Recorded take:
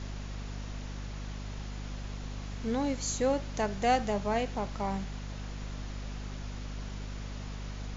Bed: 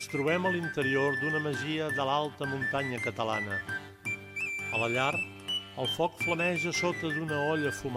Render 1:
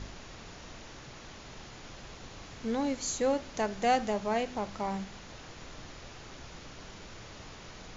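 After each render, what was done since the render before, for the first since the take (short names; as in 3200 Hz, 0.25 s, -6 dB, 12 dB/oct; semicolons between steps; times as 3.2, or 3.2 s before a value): de-hum 50 Hz, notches 5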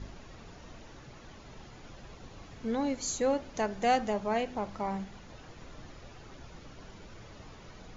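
denoiser 8 dB, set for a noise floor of -48 dBFS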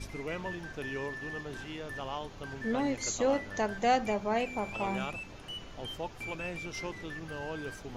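add bed -9.5 dB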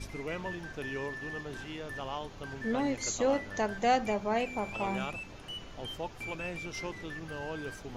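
nothing audible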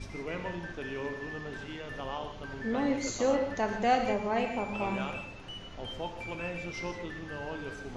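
air absorption 68 m; non-linear reverb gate 0.2 s flat, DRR 4.5 dB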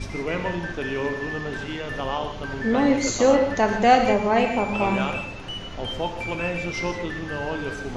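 gain +10 dB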